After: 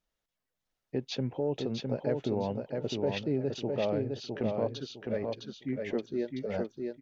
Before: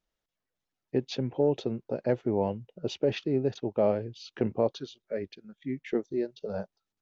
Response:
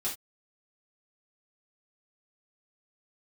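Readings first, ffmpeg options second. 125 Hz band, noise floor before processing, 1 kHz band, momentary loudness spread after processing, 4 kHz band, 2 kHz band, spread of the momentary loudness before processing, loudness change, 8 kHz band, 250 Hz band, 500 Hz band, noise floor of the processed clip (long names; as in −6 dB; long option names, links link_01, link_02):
−1.0 dB, below −85 dBFS, −3.0 dB, 6 LU, +1.0 dB, +0.5 dB, 10 LU, −3.0 dB, can't be measured, −1.5 dB, −3.0 dB, below −85 dBFS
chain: -af "equalizer=frequency=350:width=3.6:gain=-3.5,alimiter=limit=-21.5dB:level=0:latency=1:release=106,aecho=1:1:659|1318|1977|2636:0.631|0.17|0.046|0.0124"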